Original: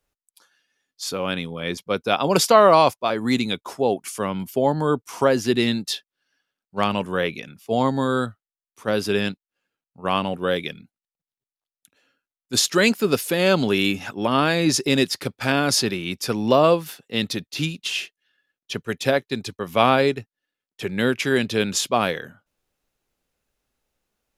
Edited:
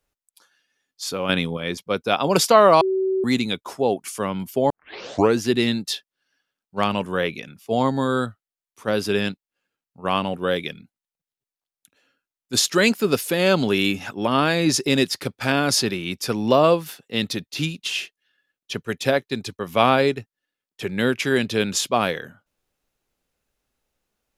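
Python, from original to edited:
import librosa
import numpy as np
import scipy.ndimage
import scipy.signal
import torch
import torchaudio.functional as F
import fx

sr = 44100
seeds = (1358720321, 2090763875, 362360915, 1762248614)

y = fx.edit(x, sr, fx.clip_gain(start_s=1.29, length_s=0.28, db=5.5),
    fx.bleep(start_s=2.81, length_s=0.43, hz=380.0, db=-18.5),
    fx.tape_start(start_s=4.7, length_s=0.7), tone=tone)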